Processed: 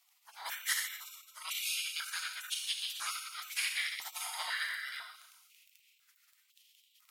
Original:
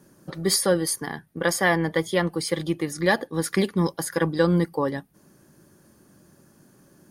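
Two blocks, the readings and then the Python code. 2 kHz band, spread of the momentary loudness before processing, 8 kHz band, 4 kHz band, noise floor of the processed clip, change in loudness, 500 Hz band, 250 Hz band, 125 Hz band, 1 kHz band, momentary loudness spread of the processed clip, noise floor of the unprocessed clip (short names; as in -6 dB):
-9.0 dB, 8 LU, -9.0 dB, -4.0 dB, -71 dBFS, -12.0 dB, under -40 dB, under -40 dB, under -40 dB, -15.5 dB, 12 LU, -58 dBFS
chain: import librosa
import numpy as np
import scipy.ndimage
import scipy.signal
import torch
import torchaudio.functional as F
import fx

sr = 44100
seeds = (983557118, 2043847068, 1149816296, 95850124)

y = fx.rev_schroeder(x, sr, rt60_s=1.2, comb_ms=29, drr_db=1.0)
y = fx.dmg_crackle(y, sr, seeds[0], per_s=10.0, level_db=-36.0)
y = fx.spec_gate(y, sr, threshold_db=-30, keep='weak')
y = fx.filter_held_highpass(y, sr, hz=2.0, low_hz=870.0, high_hz=3100.0)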